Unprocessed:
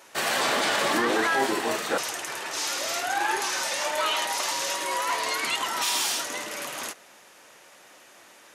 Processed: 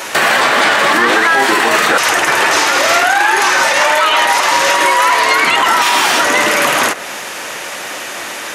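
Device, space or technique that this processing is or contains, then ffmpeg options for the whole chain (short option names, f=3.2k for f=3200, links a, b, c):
mastering chain: -filter_complex "[0:a]equalizer=f=2.1k:t=o:w=1.8:g=3,acrossover=split=970|2200[a][b][c];[a]acompressor=threshold=-37dB:ratio=4[d];[b]acompressor=threshold=-31dB:ratio=4[e];[c]acompressor=threshold=-41dB:ratio=4[f];[d][e][f]amix=inputs=3:normalize=0,acompressor=threshold=-35dB:ratio=2,alimiter=level_in=27dB:limit=-1dB:release=50:level=0:latency=1,volume=-1dB"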